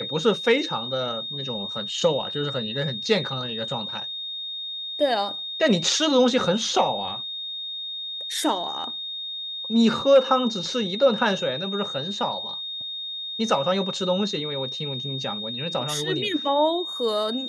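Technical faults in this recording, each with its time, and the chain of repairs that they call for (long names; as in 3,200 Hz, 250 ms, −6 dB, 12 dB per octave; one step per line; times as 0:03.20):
whistle 3,700 Hz −30 dBFS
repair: notch filter 3,700 Hz, Q 30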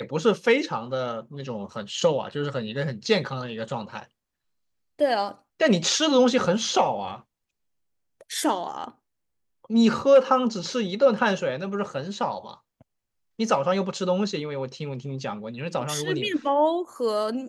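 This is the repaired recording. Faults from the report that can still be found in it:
none of them is left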